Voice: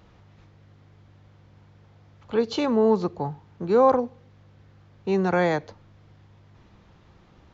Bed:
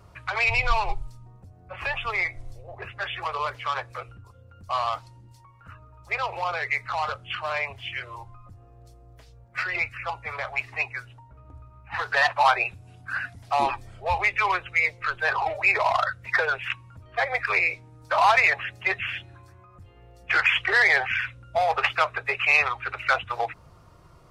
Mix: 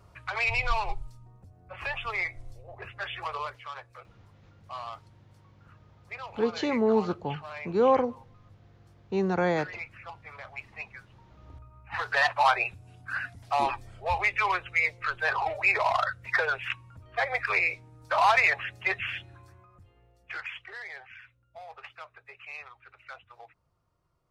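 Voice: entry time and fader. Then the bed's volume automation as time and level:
4.05 s, −4.0 dB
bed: 0:03.36 −4.5 dB
0:03.67 −12.5 dB
0:11.05 −12.5 dB
0:11.48 −3 dB
0:19.52 −3 dB
0:20.81 −22.5 dB

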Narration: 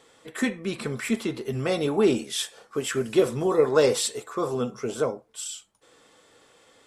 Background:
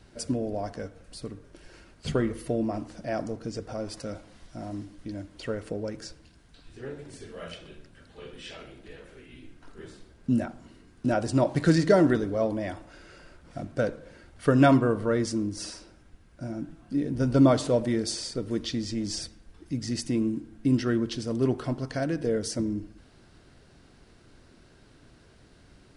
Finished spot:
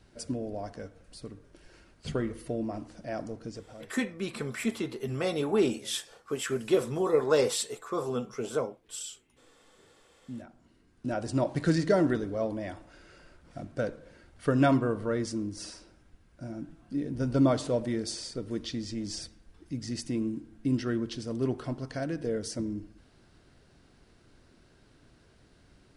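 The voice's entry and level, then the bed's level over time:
3.55 s, −4.5 dB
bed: 0:03.49 −5 dB
0:04.00 −20.5 dB
0:10.00 −20.5 dB
0:11.31 −4.5 dB

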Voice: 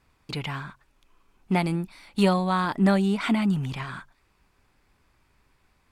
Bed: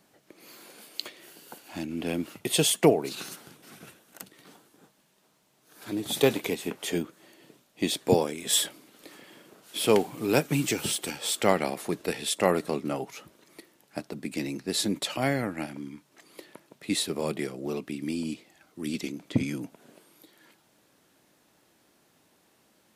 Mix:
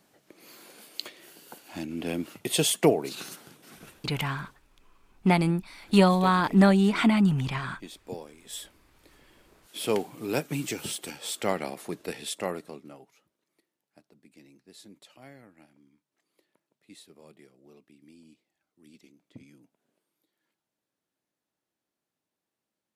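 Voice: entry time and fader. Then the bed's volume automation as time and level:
3.75 s, +2.0 dB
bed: 0:04.40 −1 dB
0:04.61 −16.5 dB
0:08.40 −16.5 dB
0:09.81 −5 dB
0:12.28 −5 dB
0:13.29 −23 dB

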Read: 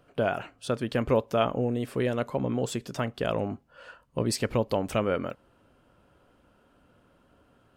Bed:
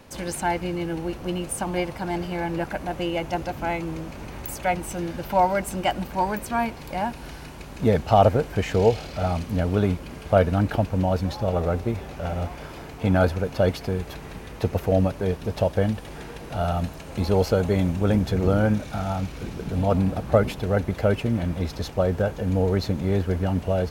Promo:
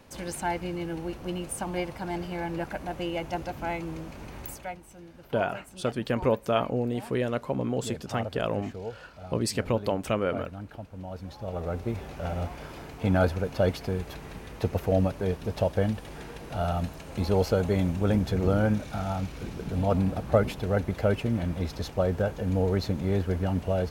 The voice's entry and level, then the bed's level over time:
5.15 s, −0.5 dB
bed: 0:04.47 −5 dB
0:04.81 −18.5 dB
0:10.92 −18.5 dB
0:12.01 −3.5 dB

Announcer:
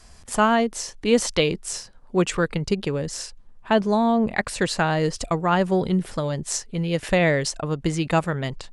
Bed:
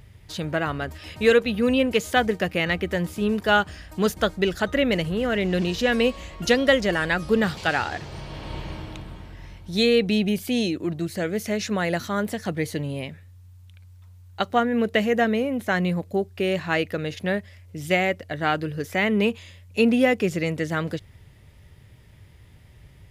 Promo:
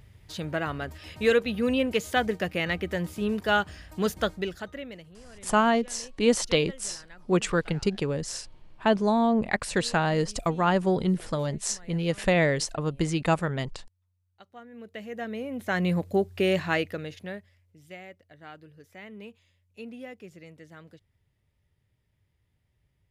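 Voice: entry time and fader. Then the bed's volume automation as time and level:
5.15 s, −3.0 dB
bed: 0:04.27 −4.5 dB
0:05.24 −27.5 dB
0:14.51 −27.5 dB
0:15.96 0 dB
0:16.60 0 dB
0:17.87 −22.5 dB

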